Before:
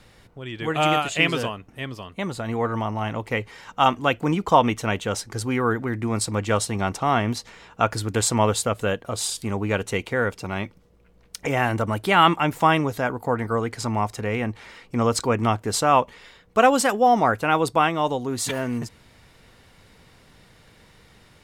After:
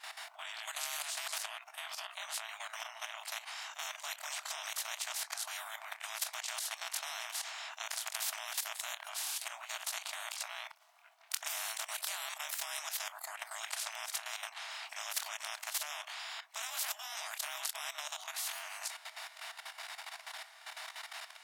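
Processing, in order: short-time reversal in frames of 54 ms; level quantiser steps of 14 dB; brick-wall FIR high-pass 620 Hz; spectral compressor 10:1; gain +4 dB

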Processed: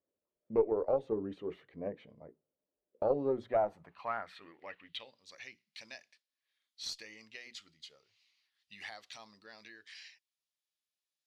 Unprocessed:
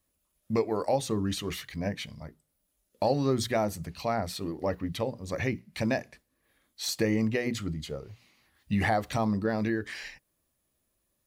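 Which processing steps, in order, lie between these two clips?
band-pass sweep 450 Hz -> 5200 Hz, 3.22–5.34; added harmonics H 2 -17 dB, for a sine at -18 dBFS; resonant high shelf 4200 Hz -6.5 dB, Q 1.5

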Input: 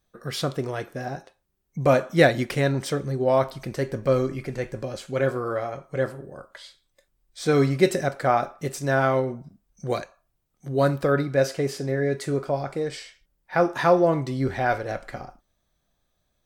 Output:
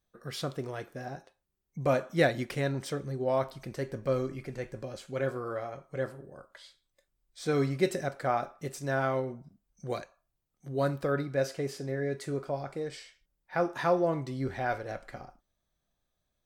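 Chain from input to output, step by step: 0.46–1.02 crackle 400/s -> 180/s -50 dBFS; gain -8 dB

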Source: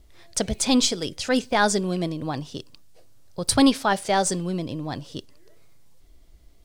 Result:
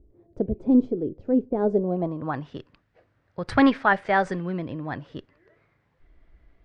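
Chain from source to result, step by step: added harmonics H 3 -19 dB, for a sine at -4.5 dBFS; low-pass sweep 380 Hz -> 1800 Hz, 1.58–2.43; gain +1.5 dB

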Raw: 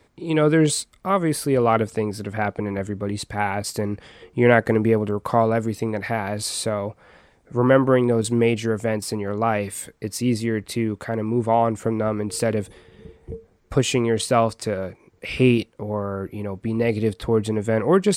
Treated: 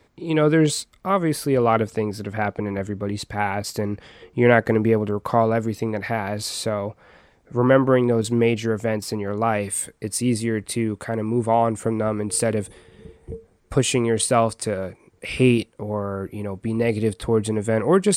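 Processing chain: bell 9000 Hz -5.5 dB 0.31 oct, from 9.37 s +9.5 dB

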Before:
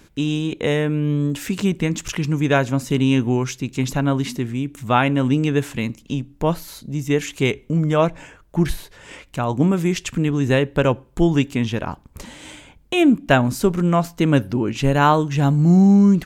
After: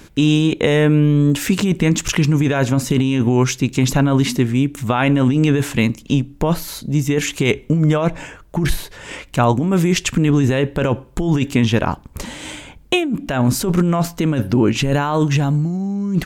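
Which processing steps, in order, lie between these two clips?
negative-ratio compressor -20 dBFS, ratio -1; gain +5 dB

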